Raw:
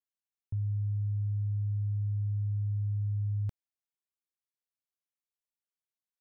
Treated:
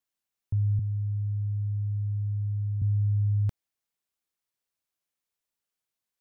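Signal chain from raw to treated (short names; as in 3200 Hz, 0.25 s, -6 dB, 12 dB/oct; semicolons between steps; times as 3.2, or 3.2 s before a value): 0.79–2.82 HPF 120 Hz 12 dB/oct; gain +6.5 dB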